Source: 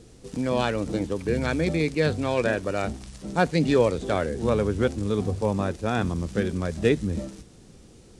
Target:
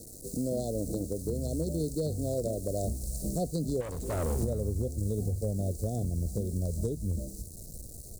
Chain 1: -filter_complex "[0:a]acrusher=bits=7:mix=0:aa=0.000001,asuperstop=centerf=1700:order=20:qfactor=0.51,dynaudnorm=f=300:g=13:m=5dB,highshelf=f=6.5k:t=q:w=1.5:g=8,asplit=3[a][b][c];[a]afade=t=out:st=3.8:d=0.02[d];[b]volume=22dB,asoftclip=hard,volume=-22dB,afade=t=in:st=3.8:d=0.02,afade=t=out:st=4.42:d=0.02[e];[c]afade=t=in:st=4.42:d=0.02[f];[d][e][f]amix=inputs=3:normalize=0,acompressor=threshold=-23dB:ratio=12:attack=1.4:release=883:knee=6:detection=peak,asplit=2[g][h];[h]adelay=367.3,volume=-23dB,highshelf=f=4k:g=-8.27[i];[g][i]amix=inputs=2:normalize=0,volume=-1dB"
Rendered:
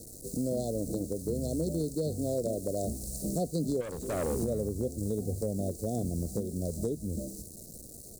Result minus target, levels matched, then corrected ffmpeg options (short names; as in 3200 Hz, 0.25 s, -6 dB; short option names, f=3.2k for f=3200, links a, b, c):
125 Hz band -3.5 dB
-filter_complex "[0:a]acrusher=bits=7:mix=0:aa=0.000001,asuperstop=centerf=1700:order=20:qfactor=0.51,asubboost=boost=3.5:cutoff=120,dynaudnorm=f=300:g=13:m=5dB,highshelf=f=6.5k:t=q:w=1.5:g=8,asplit=3[a][b][c];[a]afade=t=out:st=3.8:d=0.02[d];[b]volume=22dB,asoftclip=hard,volume=-22dB,afade=t=in:st=3.8:d=0.02,afade=t=out:st=4.42:d=0.02[e];[c]afade=t=in:st=4.42:d=0.02[f];[d][e][f]amix=inputs=3:normalize=0,acompressor=threshold=-23dB:ratio=12:attack=1.4:release=883:knee=6:detection=peak,asplit=2[g][h];[h]adelay=367.3,volume=-23dB,highshelf=f=4k:g=-8.27[i];[g][i]amix=inputs=2:normalize=0,volume=-1dB"